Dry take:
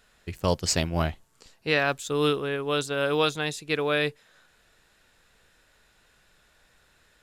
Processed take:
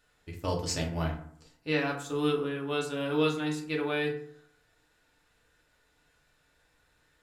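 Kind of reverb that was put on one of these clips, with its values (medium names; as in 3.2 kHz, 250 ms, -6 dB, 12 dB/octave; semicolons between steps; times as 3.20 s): FDN reverb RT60 0.61 s, low-frequency decay 1.2×, high-frequency decay 0.5×, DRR -1.5 dB; trim -10 dB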